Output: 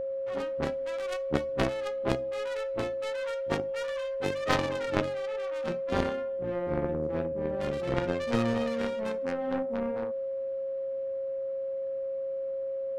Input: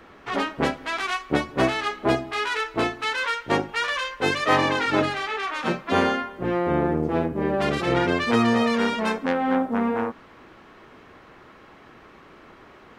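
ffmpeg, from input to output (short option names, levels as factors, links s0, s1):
-af "aeval=exprs='0.531*(cos(1*acos(clip(val(0)/0.531,-1,1)))-cos(1*PI/2))+0.15*(cos(3*acos(clip(val(0)/0.531,-1,1)))-cos(3*PI/2))':c=same,aeval=exprs='val(0)+0.0316*sin(2*PI*540*n/s)':c=same,lowshelf=f=250:g=9.5,volume=0.794"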